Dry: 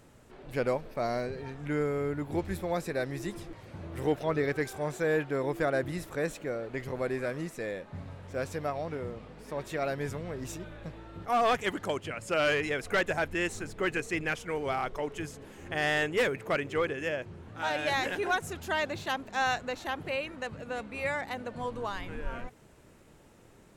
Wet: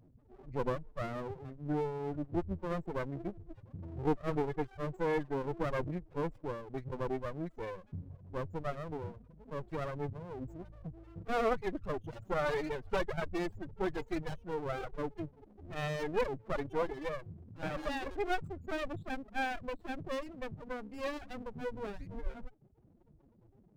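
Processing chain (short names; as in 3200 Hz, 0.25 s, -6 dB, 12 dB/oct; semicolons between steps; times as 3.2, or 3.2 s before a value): loudest bins only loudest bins 8; reverb removal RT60 0.81 s; running maximum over 33 samples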